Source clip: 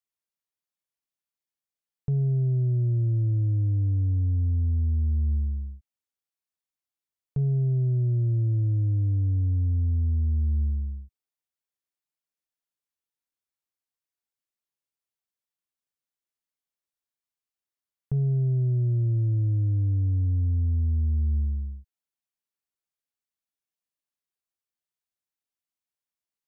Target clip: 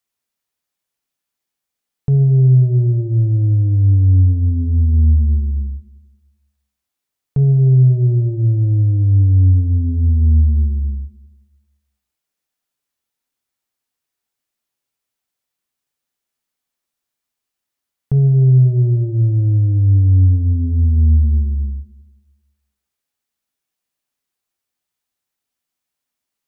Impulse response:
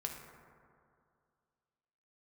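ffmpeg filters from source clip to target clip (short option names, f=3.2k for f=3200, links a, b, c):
-filter_complex "[0:a]asplit=2[a][b];[1:a]atrim=start_sample=2205,asetrate=74970,aresample=44100[c];[b][c]afir=irnorm=-1:irlink=0,volume=2.5dB[d];[a][d]amix=inputs=2:normalize=0,volume=6.5dB"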